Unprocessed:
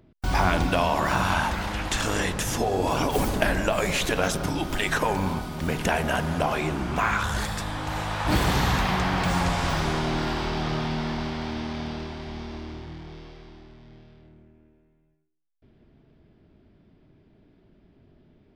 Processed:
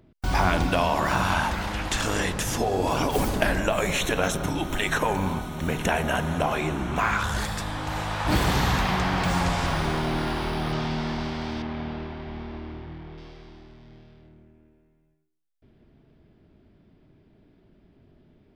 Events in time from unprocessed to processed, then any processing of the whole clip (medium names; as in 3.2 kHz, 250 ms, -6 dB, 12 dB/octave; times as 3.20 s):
3.60–6.99 s: Butterworth band-stop 4.8 kHz, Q 5.1
9.66–10.73 s: decimation joined by straight lines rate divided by 3×
11.62–13.18 s: low-pass 2.7 kHz